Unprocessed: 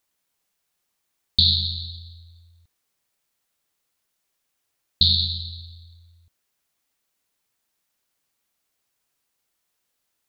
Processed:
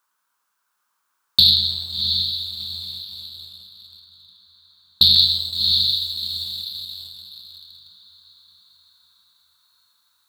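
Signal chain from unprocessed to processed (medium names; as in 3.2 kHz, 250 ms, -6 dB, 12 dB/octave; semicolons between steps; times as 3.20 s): high-pass 240 Hz 6 dB/octave; high-order bell 1.2 kHz +15.5 dB 1 oct; echo that smears into a reverb 700 ms, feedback 42%, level -7 dB; waveshaping leveller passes 1; treble shelf 3.1 kHz +3 dB, from 5.16 s +9 dB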